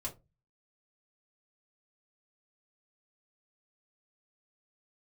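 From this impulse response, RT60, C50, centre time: 0.25 s, 15.5 dB, 13 ms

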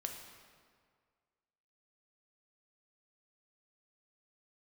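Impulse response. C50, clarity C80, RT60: 5.0 dB, 6.5 dB, 1.9 s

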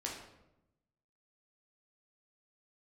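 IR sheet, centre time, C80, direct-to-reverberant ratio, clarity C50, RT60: 42 ms, 7.0 dB, -3.0 dB, 3.5 dB, 0.90 s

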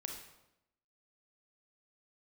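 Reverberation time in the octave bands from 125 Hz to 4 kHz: 0.95, 1.0, 0.95, 0.85, 0.75, 0.70 s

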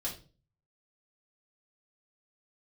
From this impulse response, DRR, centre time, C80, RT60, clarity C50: -5.0 dB, 21 ms, 15.0 dB, 0.35 s, 9.0 dB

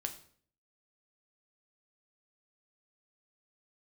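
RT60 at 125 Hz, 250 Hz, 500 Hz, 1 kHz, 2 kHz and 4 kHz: 0.70, 0.65, 0.55, 0.50, 0.50, 0.45 s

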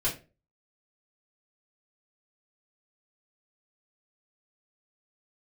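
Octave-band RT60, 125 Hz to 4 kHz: 0.45, 0.40, 0.35, 0.30, 0.25, 0.25 s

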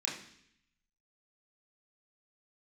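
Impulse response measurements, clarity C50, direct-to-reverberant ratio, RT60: 6.5 dB, -5.5 dB, 0.65 s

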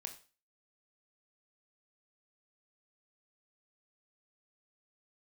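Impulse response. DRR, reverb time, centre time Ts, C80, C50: 4.5 dB, 0.35 s, 12 ms, 16.0 dB, 11.5 dB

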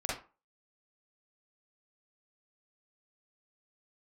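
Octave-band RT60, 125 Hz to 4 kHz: 0.25, 0.35, 0.30, 0.35, 0.30, 0.20 s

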